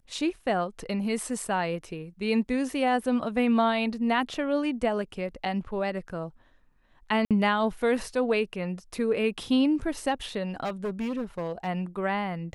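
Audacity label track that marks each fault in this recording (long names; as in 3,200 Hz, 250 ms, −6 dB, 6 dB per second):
7.250000	7.310000	drop-out 57 ms
10.640000	11.680000	clipping −26.5 dBFS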